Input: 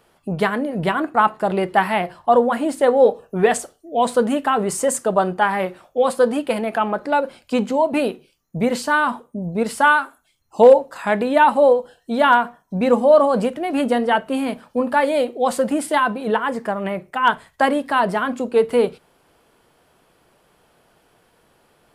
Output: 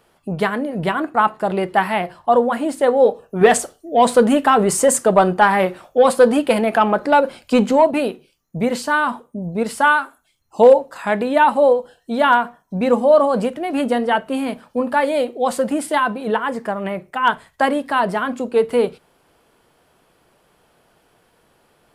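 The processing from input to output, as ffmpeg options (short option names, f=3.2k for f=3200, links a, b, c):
-filter_complex "[0:a]asettb=1/sr,asplit=3[a][b][c];[a]atrim=end=3.414[d];[b]atrim=start=3.41:end=7.91,asetpts=PTS-STARTPTS,afade=t=in:d=0.004:c=qsin,afade=t=out:st=4.496:d=0.004:c=qsin,acontrast=41[e];[c]atrim=start=7.906[f];[d][e]acrossfade=d=0.004:c1=hsin:c2=qsin[g];[g][f]acrossfade=d=0.004:c1=qsin:c2=hsin"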